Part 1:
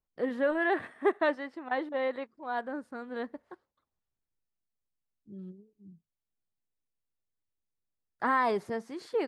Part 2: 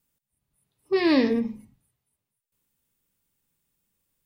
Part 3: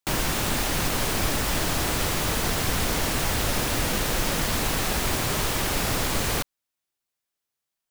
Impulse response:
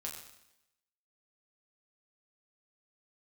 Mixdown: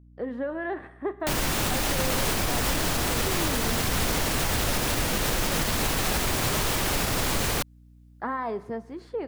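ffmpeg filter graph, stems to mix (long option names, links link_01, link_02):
-filter_complex "[0:a]highshelf=frequency=2200:gain=-11.5,volume=1.5dB,asplit=2[link_01][link_02];[link_02]volume=-13.5dB[link_03];[1:a]adelay=2350,volume=-1dB[link_04];[2:a]adelay=1200,volume=3dB[link_05];[link_01][link_04]amix=inputs=2:normalize=0,acompressor=threshold=-29dB:ratio=6,volume=0dB[link_06];[3:a]atrim=start_sample=2205[link_07];[link_03][link_07]afir=irnorm=-1:irlink=0[link_08];[link_05][link_06][link_08]amix=inputs=3:normalize=0,aeval=exprs='val(0)+0.00282*(sin(2*PI*60*n/s)+sin(2*PI*2*60*n/s)/2+sin(2*PI*3*60*n/s)/3+sin(2*PI*4*60*n/s)/4+sin(2*PI*5*60*n/s)/5)':channel_layout=same,alimiter=limit=-15.5dB:level=0:latency=1:release=86"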